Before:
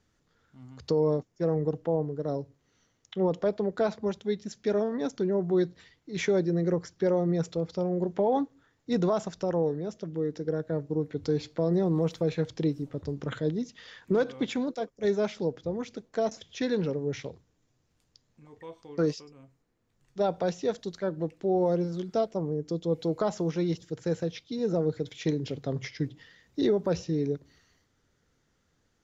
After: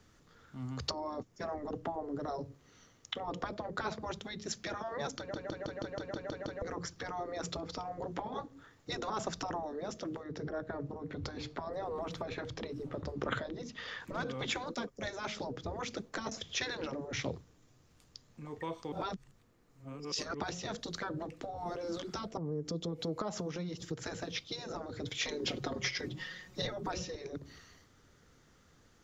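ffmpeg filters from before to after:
-filter_complex "[0:a]asettb=1/sr,asplit=3[a][b][c];[a]atrim=end=10.234[d];[b]atrim=start=10.23:end=14,asetpts=PTS-STARTPTS,afade=t=in:d=0.004:c=qsin,afade=t=out:st=3.766:d=0.004:c=qsin,highshelf=f=4.3k:g=-10.5[e];[c]atrim=start=13.996[f];[d][e]acrossfade=d=0.004:c1=hsin:c2=qsin[g];[g][f]acrossfade=d=0.004:c1=qsin:c2=hsin,asettb=1/sr,asplit=3[h][i][j];[h]atrim=end=22.374[k];[i]atrim=start=22.37:end=24.03,asetpts=PTS-STARTPTS,afade=t=in:d=0.004:c=qsin,afade=t=out:st=1.656:d=0.004:c=qsin,acompressor=threshold=-42dB:ratio=4:attack=3.2:release=140:knee=1:detection=peak[l];[j]atrim=start=24.026[m];[k][l]acrossfade=d=0.004:c1=hsin:c2=qsin[n];[n][m]acrossfade=d=0.004:c1=qsin:c2=hsin,asettb=1/sr,asplit=3[o][p][q];[o]atrim=end=25.224[r];[p]atrim=start=25.22:end=27.15,asetpts=PTS-STARTPTS,afade=t=in:d=0.004:c=qsin,afade=t=out:st=1.926:d=0.004:c=qsin,aecho=1:1:5.5:0.87,atrim=end_sample=85113[s];[q]atrim=start=27.146[t];[r][s]acrossfade=d=0.004:c1=hsin:c2=qsin[u];[u][t]acrossfade=d=0.004:c1=qsin:c2=hsin,asplit=12[v][w][x][y][z][aa][ab][ac][ad][ae][af][ag];[v]atrim=end=5.342[ah];[w]atrim=start=5.178:end=5.342[ai];[x]atrim=start=5.178:end=5.342[aj];[y]atrim=start=5.178:end=5.342[ak];[z]atrim=start=5.178:end=5.342[al];[aa]atrim=start=5.178:end=5.342[am];[ab]atrim=start=5.178:end=5.342[an];[ac]atrim=start=5.178:end=5.342[ao];[ad]atrim=start=5.178:end=5.342[ap];[ae]atrim=start=6.618:end=18.922[aq];[af]atrim=start=18.918:end=20.402,asetpts=PTS-STARTPTS,areverse[ar];[ag]atrim=start=20.398[as];[ah][ai]acrossfade=d=0.004:c1=hsin:c2=hsin[at];[at][aj]acrossfade=d=0.004:c1=hsin:c2=hsin[au];[au][ak]acrossfade=d=0.004:c1=hsin:c2=hsin[av];[av][al]acrossfade=d=0.004:c1=hsin:c2=hsin[aw];[aw][am]acrossfade=d=0.004:c1=hsin:c2=hsin[ax];[ax][an]acrossfade=d=0.004:c1=hsin:c2=hsin[ay];[ay][ao]acrossfade=d=0.004:c1=hsin:c2=hsin[az];[az][ap]acrossfade=d=0.004:c1=hsin:c2=hsin[ba];[ba][aq]acrossfade=d=0.004:c1=hsin:c2=hsin[bb];[bb][ar]acrossfade=d=0.004:c1=hsin:c2=hsin[bc];[bc][as]acrossfade=d=0.004:c1=hsin:c2=hsin,acrossover=split=210[bd][be];[be]acompressor=threshold=-36dB:ratio=2.5[bf];[bd][bf]amix=inputs=2:normalize=0,equalizer=f=1.2k:t=o:w=0.21:g=4.5,afftfilt=real='re*lt(hypot(re,im),0.0794)':imag='im*lt(hypot(re,im),0.0794)':win_size=1024:overlap=0.75,volume=7.5dB"

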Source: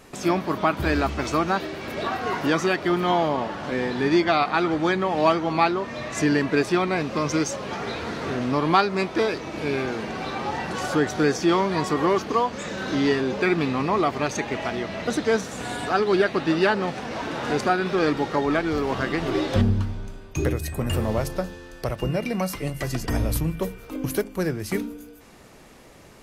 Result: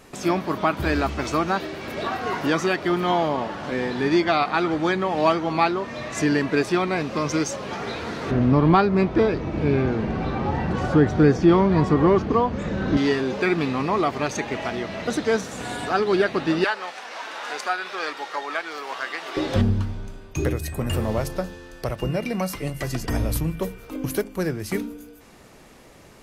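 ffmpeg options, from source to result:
-filter_complex "[0:a]asettb=1/sr,asplit=3[a][b][c];[a]atrim=end=8.314[d];[b]atrim=start=8.31:end=12.97,asetpts=PTS-STARTPTS,afade=t=in:d=0.004:c=qsin,afade=t=out:st=4.656:d=0.004:c=qsin,aemphasis=mode=reproduction:type=riaa[e];[c]atrim=start=12.966[f];[d][e]acrossfade=d=0.004:c1=hsin:c2=qsin[g];[g][f]acrossfade=d=0.004:c1=qsin:c2=hsin,asettb=1/sr,asplit=3[h][i][j];[h]atrim=end=16.644[k];[i]atrim=start=16.64:end=19.37,asetpts=PTS-STARTPTS,afade=t=in:d=0.004:c=qsin,afade=t=out:st=2.726:d=0.004:c=qsin,highpass=860[l];[j]atrim=start=19.366[m];[k][l]acrossfade=d=0.004:c1=hsin:c2=qsin[n];[n][m]acrossfade=d=0.004:c1=qsin:c2=hsin"

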